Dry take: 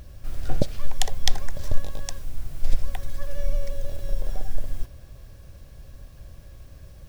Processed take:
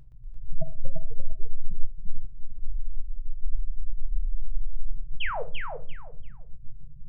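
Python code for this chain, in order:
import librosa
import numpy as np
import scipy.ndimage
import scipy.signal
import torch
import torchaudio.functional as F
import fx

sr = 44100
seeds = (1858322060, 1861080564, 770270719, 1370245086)

p1 = fx.lower_of_two(x, sr, delay_ms=6.1)
p2 = fx.spec_gate(p1, sr, threshold_db=-10, keep='strong')
p3 = fx.echo_pitch(p2, sr, ms=120, semitones=-3, count=3, db_per_echo=-6.0)
p4 = fx.auto_swell(p3, sr, attack_ms=524.0, at=(2.11, 2.59), fade=0.02)
p5 = fx.spec_paint(p4, sr, seeds[0], shape='fall', start_s=5.2, length_s=0.23, low_hz=410.0, high_hz=3400.0, level_db=-28.0)
p6 = p5 + fx.echo_feedback(p5, sr, ms=343, feedback_pct=23, wet_db=-5.0, dry=0)
p7 = fx.room_shoebox(p6, sr, seeds[1], volume_m3=240.0, walls='furnished', distance_m=0.58)
y = p7 * librosa.db_to_amplitude(-4.0)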